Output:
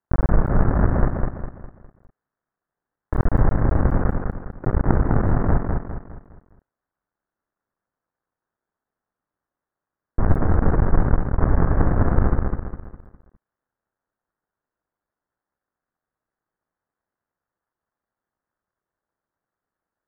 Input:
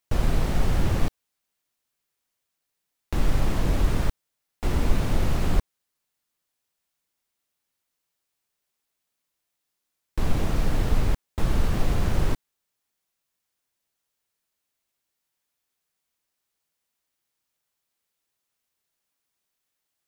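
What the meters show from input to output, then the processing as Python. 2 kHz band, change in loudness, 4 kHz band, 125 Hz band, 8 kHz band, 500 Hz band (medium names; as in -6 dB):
+2.5 dB, +5.5 dB, under -35 dB, +6.5 dB, under -35 dB, +7.0 dB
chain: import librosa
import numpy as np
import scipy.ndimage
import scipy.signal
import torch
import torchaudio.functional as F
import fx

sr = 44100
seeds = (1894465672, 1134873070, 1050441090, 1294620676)

y = fx.cycle_switch(x, sr, every=2, mode='muted')
y = scipy.signal.sosfilt(scipy.signal.butter(8, 1700.0, 'lowpass', fs=sr, output='sos'), y)
y = fx.echo_feedback(y, sr, ms=204, feedback_pct=41, wet_db=-4)
y = y * librosa.db_to_amplitude(5.5)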